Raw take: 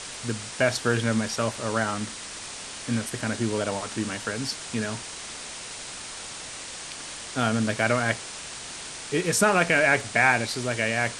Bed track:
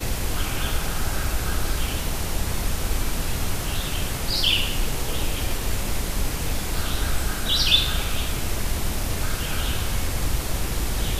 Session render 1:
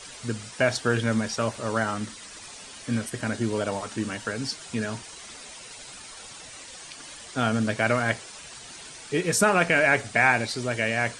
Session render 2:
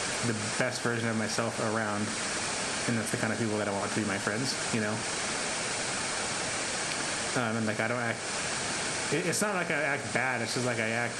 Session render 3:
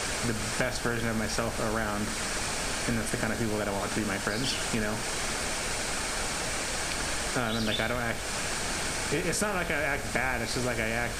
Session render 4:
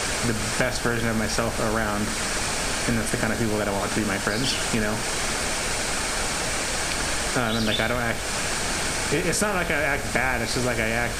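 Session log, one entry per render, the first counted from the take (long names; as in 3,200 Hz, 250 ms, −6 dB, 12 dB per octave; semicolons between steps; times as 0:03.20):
broadband denoise 10 dB, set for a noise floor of −39 dBFS
compressor on every frequency bin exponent 0.6; downward compressor 6 to 1, threshold −26 dBFS, peak gain reduction 12.5 dB
mix in bed track −15.5 dB
level +5.5 dB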